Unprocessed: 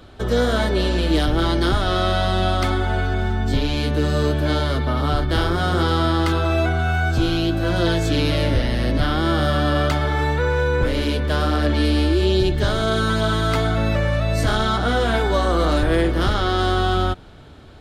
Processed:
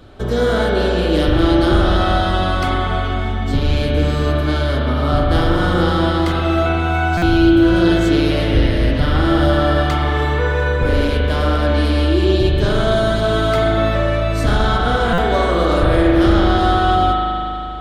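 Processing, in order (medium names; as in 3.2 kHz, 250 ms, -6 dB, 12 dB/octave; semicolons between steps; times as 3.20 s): bass shelf 450 Hz +4.5 dB; spring tank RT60 3.1 s, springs 39 ms, chirp 55 ms, DRR -2.5 dB; buffer glitch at 7.17/15.13 s, samples 256, times 8; trim -1.5 dB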